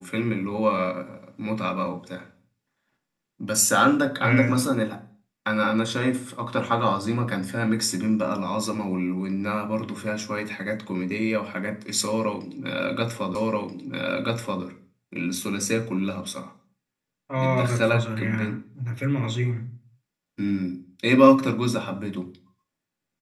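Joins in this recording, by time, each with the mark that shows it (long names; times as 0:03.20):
0:13.35: the same again, the last 1.28 s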